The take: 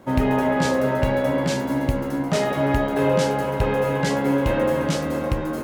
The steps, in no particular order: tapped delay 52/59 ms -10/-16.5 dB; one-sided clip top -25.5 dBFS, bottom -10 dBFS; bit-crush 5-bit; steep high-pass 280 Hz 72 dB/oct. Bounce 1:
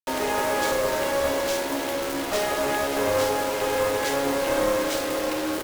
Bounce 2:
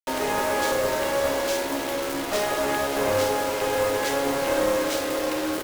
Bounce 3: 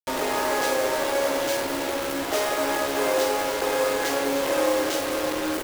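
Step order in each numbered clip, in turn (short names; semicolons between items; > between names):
steep high-pass > bit-crush > tapped delay > one-sided clip; steep high-pass > bit-crush > one-sided clip > tapped delay; one-sided clip > steep high-pass > bit-crush > tapped delay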